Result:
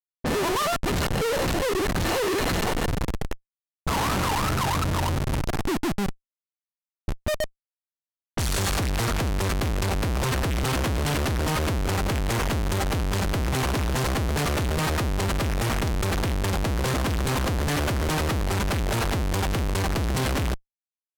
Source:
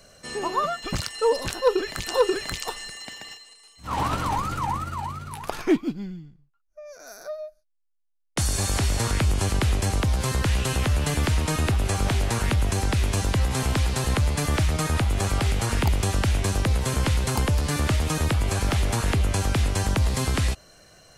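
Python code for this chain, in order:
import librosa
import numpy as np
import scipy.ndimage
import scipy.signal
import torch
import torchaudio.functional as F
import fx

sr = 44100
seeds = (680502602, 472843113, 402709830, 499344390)

y = fx.schmitt(x, sr, flips_db=-31.0)
y = fx.env_lowpass(y, sr, base_hz=360.0, full_db=-24.5)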